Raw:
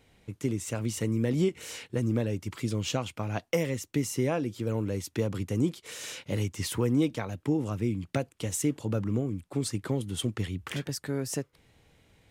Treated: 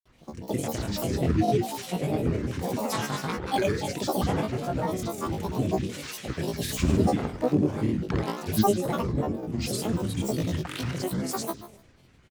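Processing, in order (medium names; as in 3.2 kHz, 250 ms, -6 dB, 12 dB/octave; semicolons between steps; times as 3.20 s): pitch shift switched off and on +5 st, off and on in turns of 75 ms; flutter echo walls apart 4.3 m, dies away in 0.85 s; granulator, pitch spread up and down by 12 st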